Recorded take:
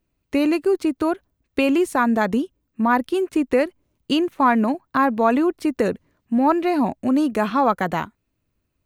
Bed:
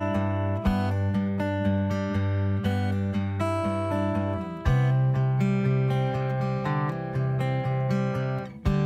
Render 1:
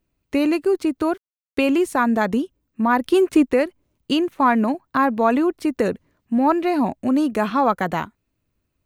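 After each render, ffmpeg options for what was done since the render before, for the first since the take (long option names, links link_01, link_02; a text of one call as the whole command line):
ffmpeg -i in.wav -filter_complex "[0:a]asettb=1/sr,asplit=3[link_01][link_02][link_03];[link_01]atrim=end=1.024[link_04];[link_02]atrim=start=1.02:end=1.63,asetpts=PTS-STARTPTS,afade=type=in:duration=0.004:curve=qsin,afade=type=out:start_time=0.606:duration=0.004:curve=qsin,aeval=exprs='val(0)*gte(abs(val(0)),0.00376)':channel_layout=same[link_05];[link_03]atrim=start=1.626[link_06];[link_04][link_05]acrossfade=duration=0.004:curve1=hsin:curve2=qsin[link_07];[link_07][link_06]acrossfade=duration=0.004:curve1=qsin:curve2=hsin,asettb=1/sr,asplit=3[link_08][link_09][link_10];[link_08]atrim=end=3.044[link_11];[link_09]atrim=start=3.04:end=3.46,asetpts=PTS-STARTPTS,afade=type=in:duration=0.004:curve=qsin,afade=type=out:start_time=0.416:duration=0.004:curve=qsin,acontrast=47[link_12];[link_10]atrim=start=3.456[link_13];[link_11][link_12]acrossfade=duration=0.004:curve1=hsin:curve2=qsin[link_14];[link_14][link_13]acrossfade=duration=0.004:curve1=qsin:curve2=hsin" out.wav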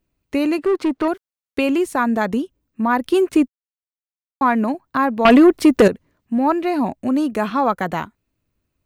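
ffmpeg -i in.wav -filter_complex "[0:a]asettb=1/sr,asplit=3[link_01][link_02][link_03];[link_01]atrim=end=0.584[link_04];[link_02]atrim=start=0.58:end=1.08,asetpts=PTS-STARTPTS,afade=type=in:duration=0.004:curve=qsin,afade=type=out:start_time=0.496:duration=0.004:curve=qsin,asplit=2[link_05][link_06];[link_06]highpass=frequency=720:poles=1,volume=20dB,asoftclip=type=tanh:threshold=-10.5dB[link_07];[link_05][link_07]amix=inputs=2:normalize=0,lowpass=frequency=1200:poles=1,volume=-6dB[link_08];[link_03]atrim=start=1.076[link_09];[link_04][link_08]acrossfade=duration=0.004:curve1=hsin:curve2=qsin[link_10];[link_10][link_09]acrossfade=duration=0.004:curve1=qsin:curve2=hsin,asettb=1/sr,asplit=3[link_11][link_12][link_13];[link_11]atrim=end=5.254[link_14];[link_12]atrim=start=5.25:end=5.88,asetpts=PTS-STARTPTS,afade=type=in:duration=0.004:curve=qsin,afade=type=out:start_time=0.626:duration=0.004:curve=qsin,aeval=exprs='0.562*sin(PI/2*2.24*val(0)/0.562)':channel_layout=same[link_15];[link_13]atrim=start=5.876[link_16];[link_14][link_15]acrossfade=duration=0.004:curve1=hsin:curve2=qsin[link_17];[link_17][link_16]acrossfade=duration=0.004:curve1=qsin:curve2=hsin,asplit=3[link_18][link_19][link_20];[link_18]atrim=end=3.48,asetpts=PTS-STARTPTS,afade=type=out:start_time=3.476:duration=0.004:curve=hsin[link_21];[link_19]atrim=start=3.48:end=4.41,asetpts=PTS-STARTPTS,volume=0[link_22];[link_20]atrim=start=4.41,asetpts=PTS-STARTPTS,afade=type=in:duration=0.004:curve=hsin[link_23];[link_21][link_22][link_23]concat=n=3:v=0:a=1" out.wav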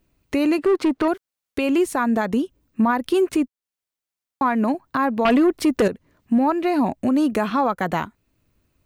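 ffmpeg -i in.wav -filter_complex "[0:a]asplit=2[link_01][link_02];[link_02]acompressor=threshold=-23dB:ratio=6,volume=2dB[link_03];[link_01][link_03]amix=inputs=2:normalize=0,alimiter=limit=-11.5dB:level=0:latency=1:release=434" out.wav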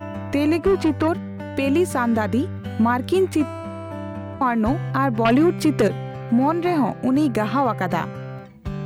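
ffmpeg -i in.wav -i bed.wav -filter_complex "[1:a]volume=-5dB[link_01];[0:a][link_01]amix=inputs=2:normalize=0" out.wav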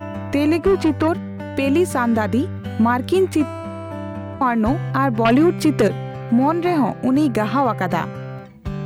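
ffmpeg -i in.wav -af "volume=2dB" out.wav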